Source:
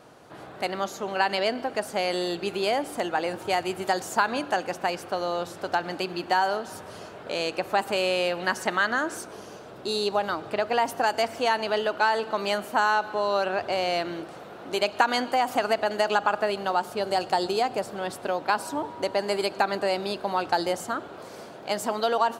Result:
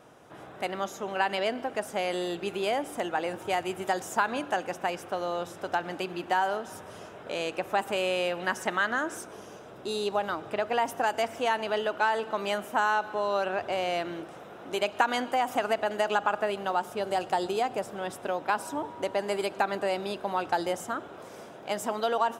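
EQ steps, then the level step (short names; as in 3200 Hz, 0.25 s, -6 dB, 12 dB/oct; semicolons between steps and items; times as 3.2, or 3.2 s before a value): notch 4400 Hz, Q 5.1; -3.0 dB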